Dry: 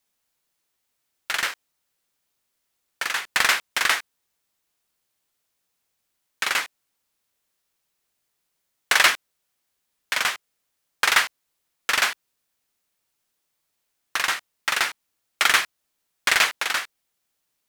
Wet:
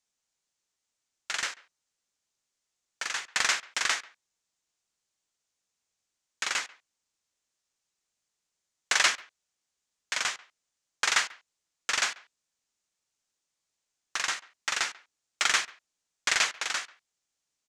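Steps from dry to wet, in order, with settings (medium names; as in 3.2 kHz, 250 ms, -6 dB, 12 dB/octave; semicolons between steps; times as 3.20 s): resonant low-pass 6.9 kHz, resonance Q 2.4; speakerphone echo 140 ms, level -22 dB; trim -8 dB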